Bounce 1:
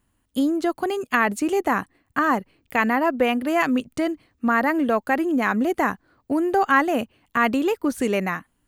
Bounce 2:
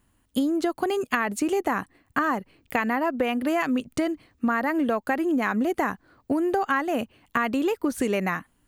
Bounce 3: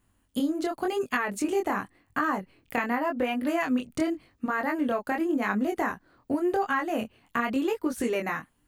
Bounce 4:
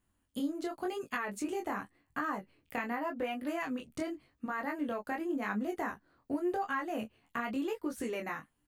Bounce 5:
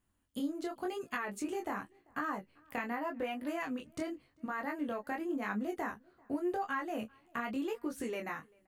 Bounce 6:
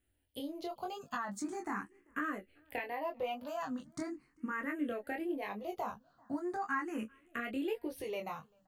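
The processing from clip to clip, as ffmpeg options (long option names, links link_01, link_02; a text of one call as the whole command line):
ffmpeg -i in.wav -af "acompressor=threshold=-24dB:ratio=6,volume=3dB" out.wav
ffmpeg -i in.wav -af "flanger=delay=19.5:depth=6.2:speed=0.89" out.wav
ffmpeg -i in.wav -filter_complex "[0:a]asplit=2[link_01][link_02];[link_02]adelay=14,volume=-9dB[link_03];[link_01][link_03]amix=inputs=2:normalize=0,volume=-8.5dB" out.wav
ffmpeg -i in.wav -filter_complex "[0:a]asplit=2[link_01][link_02];[link_02]adelay=390.7,volume=-28dB,highshelf=frequency=4000:gain=-8.79[link_03];[link_01][link_03]amix=inputs=2:normalize=0,volume=-1.5dB" out.wav
ffmpeg -i in.wav -filter_complex "[0:a]asplit=2[link_01][link_02];[link_02]afreqshift=0.4[link_03];[link_01][link_03]amix=inputs=2:normalize=1,volume=2dB" out.wav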